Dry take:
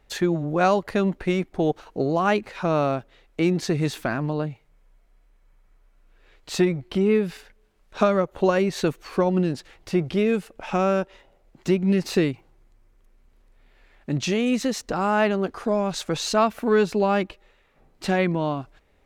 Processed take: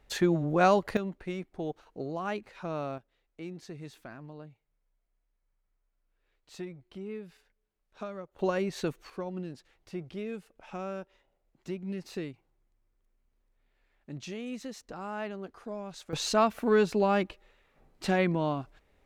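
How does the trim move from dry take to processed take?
-3 dB
from 0.97 s -13 dB
from 2.98 s -20 dB
from 8.39 s -9 dB
from 9.10 s -16 dB
from 16.13 s -4.5 dB

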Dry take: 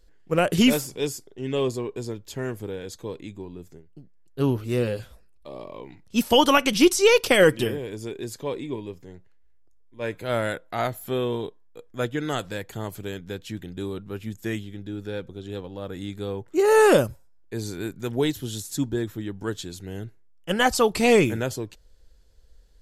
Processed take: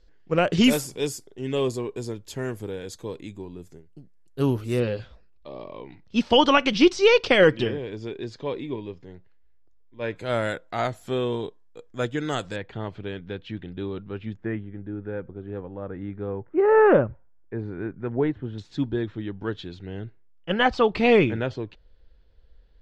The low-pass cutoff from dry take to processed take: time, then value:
low-pass 24 dB/octave
5.8 kHz
from 0.64 s 12 kHz
from 4.80 s 4.8 kHz
from 10.16 s 8.3 kHz
from 12.56 s 3.6 kHz
from 14.37 s 1.9 kHz
from 18.58 s 3.7 kHz

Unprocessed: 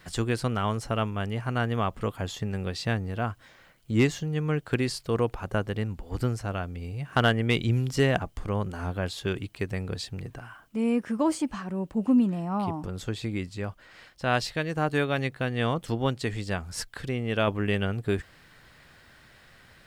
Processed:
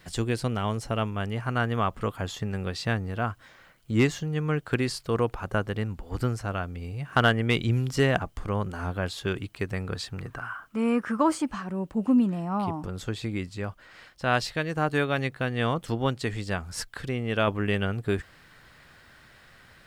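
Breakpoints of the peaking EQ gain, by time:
peaking EQ 1.3 kHz 0.87 oct
0.77 s -3.5 dB
1.43 s +3.5 dB
9.61 s +3.5 dB
10.35 s +14 dB
11.14 s +14 dB
11.61 s +2.5 dB

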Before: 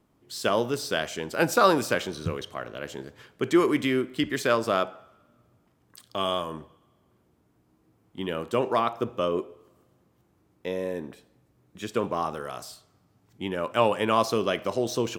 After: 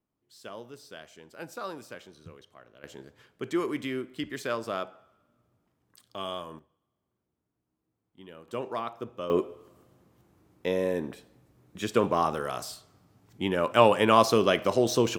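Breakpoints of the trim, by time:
-18 dB
from 2.84 s -8 dB
from 6.59 s -17 dB
from 8.48 s -9 dB
from 9.30 s +3 dB

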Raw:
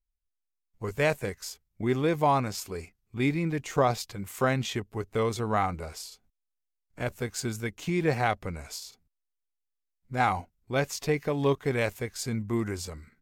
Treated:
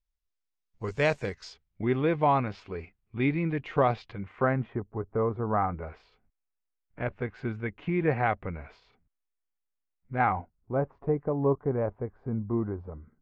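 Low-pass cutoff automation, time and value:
low-pass 24 dB/octave
1.20 s 6.3 kHz
1.89 s 3.1 kHz
4.11 s 3.1 kHz
4.77 s 1.3 kHz
5.45 s 1.3 kHz
6.00 s 2.4 kHz
10.15 s 2.4 kHz
10.81 s 1.1 kHz

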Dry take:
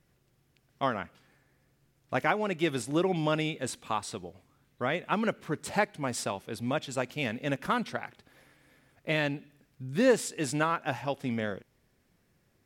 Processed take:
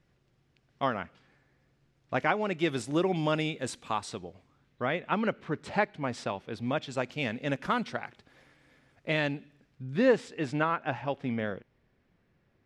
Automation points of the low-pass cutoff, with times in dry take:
2.26 s 5.1 kHz
2.93 s 8.4 kHz
3.90 s 8.4 kHz
4.99 s 3.8 kHz
6.43 s 3.8 kHz
7.24 s 6.8 kHz
9.34 s 6.8 kHz
10.23 s 3.1 kHz

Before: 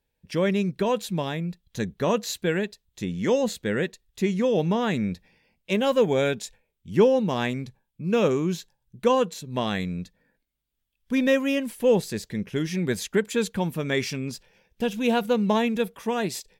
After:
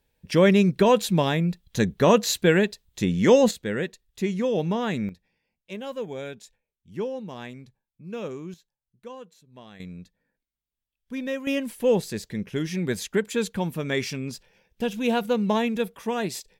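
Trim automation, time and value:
+6 dB
from 3.51 s -2 dB
from 5.09 s -12 dB
from 8.54 s -20 dB
from 9.80 s -9 dB
from 11.47 s -1 dB

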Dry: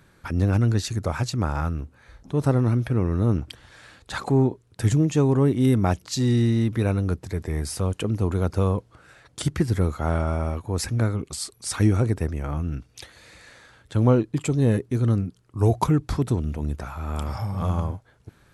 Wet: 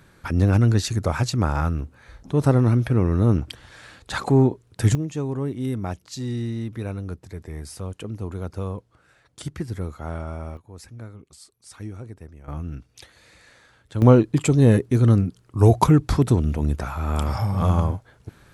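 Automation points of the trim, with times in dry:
+3 dB
from 4.95 s -7.5 dB
from 10.57 s -16 dB
from 12.48 s -4 dB
from 14.02 s +5 dB

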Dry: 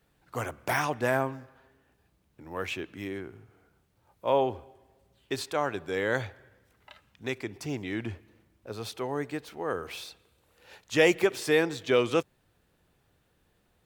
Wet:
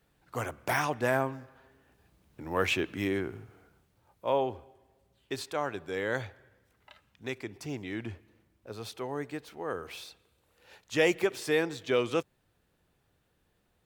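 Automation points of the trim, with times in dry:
1.31 s -1 dB
2.47 s +6 dB
3.34 s +6 dB
4.39 s -3.5 dB

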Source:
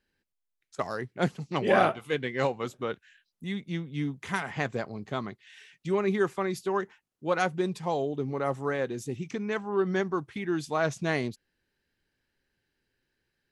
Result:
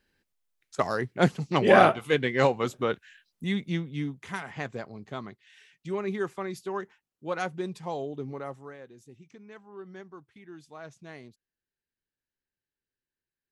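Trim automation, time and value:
3.64 s +5 dB
4.27 s -4.5 dB
8.31 s -4.5 dB
8.80 s -17 dB

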